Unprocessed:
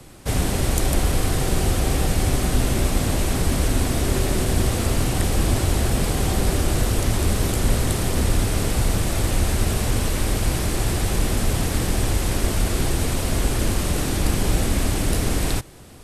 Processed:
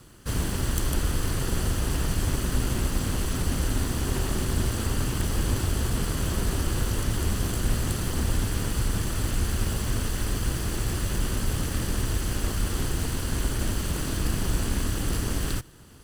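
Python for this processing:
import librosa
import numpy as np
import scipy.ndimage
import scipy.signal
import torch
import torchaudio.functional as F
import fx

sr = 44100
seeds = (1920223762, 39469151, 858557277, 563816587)

y = fx.lower_of_two(x, sr, delay_ms=0.66)
y = F.gain(torch.from_numpy(y), -5.0).numpy()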